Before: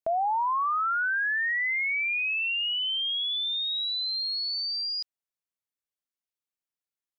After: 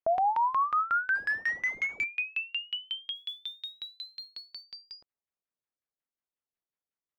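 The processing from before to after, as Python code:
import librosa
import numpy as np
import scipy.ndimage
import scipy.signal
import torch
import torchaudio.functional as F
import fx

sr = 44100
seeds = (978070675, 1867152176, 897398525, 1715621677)

y = fx.schmitt(x, sr, flips_db=-51.5, at=(1.15, 2.04))
y = fx.filter_lfo_lowpass(y, sr, shape='saw_down', hz=5.5, low_hz=400.0, high_hz=2800.0, q=1.1)
y = fx.mod_noise(y, sr, seeds[0], snr_db=31, at=(3.15, 4.64))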